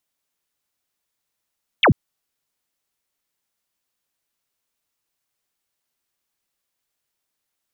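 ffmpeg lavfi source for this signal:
-f lavfi -i "aevalsrc='0.316*clip(t/0.002,0,1)*clip((0.09-t)/0.002,0,1)*sin(2*PI*3700*0.09/log(88/3700)*(exp(log(88/3700)*t/0.09)-1))':d=0.09:s=44100"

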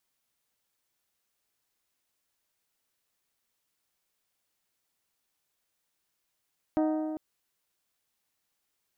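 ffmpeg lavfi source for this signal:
-f lavfi -i "aevalsrc='0.0708*pow(10,-3*t/2.22)*sin(2*PI*311*t)+0.0376*pow(10,-3*t/1.803)*sin(2*PI*622*t)+0.02*pow(10,-3*t/1.707)*sin(2*PI*746.4*t)+0.0106*pow(10,-3*t/1.597)*sin(2*PI*933*t)+0.00562*pow(10,-3*t/1.465)*sin(2*PI*1244*t)+0.00299*pow(10,-3*t/1.37)*sin(2*PI*1555*t)+0.00158*pow(10,-3*t/1.297)*sin(2*PI*1866*t)':d=0.4:s=44100"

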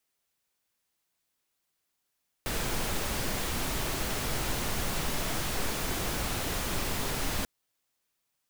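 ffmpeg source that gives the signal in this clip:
-f lavfi -i "anoisesrc=c=pink:a=0.145:d=4.99:r=44100:seed=1"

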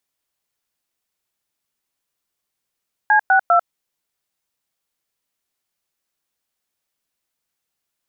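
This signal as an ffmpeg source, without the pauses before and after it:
-f lavfi -i "aevalsrc='0.224*clip(min(mod(t,0.2),0.095-mod(t,0.2))/0.002,0,1)*(eq(floor(t/0.2),0)*(sin(2*PI*852*mod(t,0.2))+sin(2*PI*1633*mod(t,0.2)))+eq(floor(t/0.2),1)*(sin(2*PI*770*mod(t,0.2))+sin(2*PI*1477*mod(t,0.2)))+eq(floor(t/0.2),2)*(sin(2*PI*697*mod(t,0.2))+sin(2*PI*1336*mod(t,0.2))))':d=0.6:s=44100"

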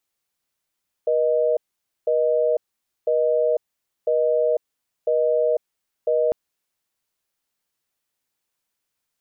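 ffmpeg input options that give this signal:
-f lavfi -i "aevalsrc='0.106*(sin(2*PI*480*t)+sin(2*PI*620*t))*clip(min(mod(t,1),0.5-mod(t,1))/0.005,0,1)':d=5.25:s=44100"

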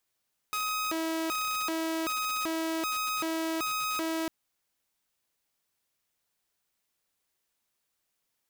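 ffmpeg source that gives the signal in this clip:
-f lavfi -i "aevalsrc='0.0473*(2*mod((792*t+468/1.3*(0.5-abs(mod(1.3*t,1)-0.5))),1)-1)':d=3.75:s=44100"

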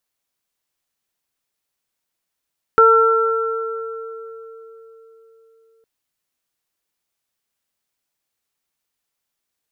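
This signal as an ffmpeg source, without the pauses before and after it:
-f lavfi -i "aevalsrc='0.282*pow(10,-3*t/4.16)*sin(2*PI*451*t)+0.0708*pow(10,-3*t/2.03)*sin(2*PI*902*t)+0.398*pow(10,-3*t/2.73)*sin(2*PI*1353*t)':d=3.06:s=44100"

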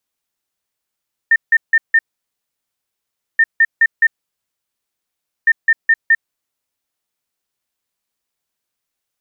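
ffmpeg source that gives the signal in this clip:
-f lavfi -i "aevalsrc='0.447*sin(2*PI*1810*t)*clip(min(mod(mod(t,2.08),0.21),0.05-mod(mod(t,2.08),0.21))/0.005,0,1)*lt(mod(t,2.08),0.84)':d=6.24:s=44100"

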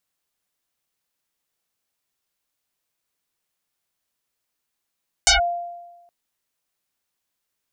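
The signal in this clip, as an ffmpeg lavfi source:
-f lavfi -i "aevalsrc='0.316*pow(10,-3*t/1.16)*sin(2*PI*695*t+11*clip(1-t/0.13,0,1)*sin(2*PI*1.07*695*t))':d=0.82:s=44100"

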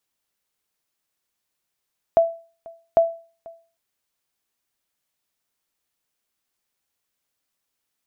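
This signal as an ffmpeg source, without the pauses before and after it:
-f lavfi -i "aevalsrc='0.398*(sin(2*PI*666*mod(t,0.8))*exp(-6.91*mod(t,0.8)/0.38)+0.0596*sin(2*PI*666*max(mod(t,0.8)-0.49,0))*exp(-6.91*max(mod(t,0.8)-0.49,0)/0.38))':d=1.6:s=44100"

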